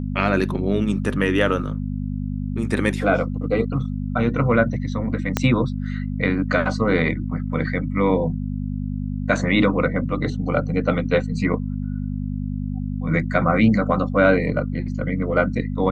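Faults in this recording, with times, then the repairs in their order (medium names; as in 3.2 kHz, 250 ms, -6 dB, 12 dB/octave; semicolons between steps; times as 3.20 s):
hum 50 Hz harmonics 5 -26 dBFS
5.37 s: pop -4 dBFS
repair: de-click; de-hum 50 Hz, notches 5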